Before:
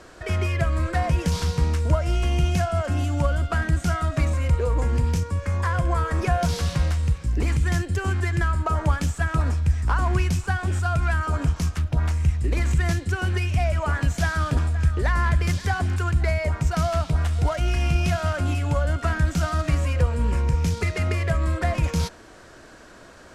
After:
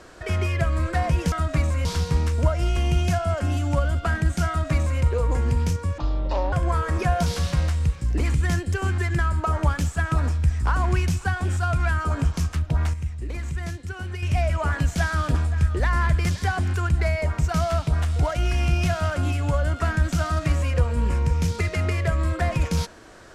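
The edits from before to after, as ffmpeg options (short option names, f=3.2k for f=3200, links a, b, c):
-filter_complex "[0:a]asplit=7[a][b][c][d][e][f][g];[a]atrim=end=1.322[h];[b]atrim=start=3.948:end=4.482[i];[c]atrim=start=1.318:end=5.454[j];[d]atrim=start=5.45:end=5.75,asetpts=PTS-STARTPTS,asetrate=24255,aresample=44100[k];[e]atrim=start=5.746:end=12.162[l];[f]atrim=start=12.158:end=13.452,asetpts=PTS-STARTPTS,volume=-8dB[m];[g]atrim=start=13.448[n];[h][i]acrossfade=d=0.004:c1=hsin:c2=hsin[o];[o][j]acrossfade=d=0.004:c1=hsin:c2=hsin[p];[p][k]acrossfade=d=0.004:c1=hsin:c2=hsin[q];[q][l]acrossfade=d=0.004:c1=hsin:c2=hsin[r];[r][m]acrossfade=d=0.004:c1=hsin:c2=hsin[s];[s][n]acrossfade=d=0.004:c1=hsin:c2=hsin"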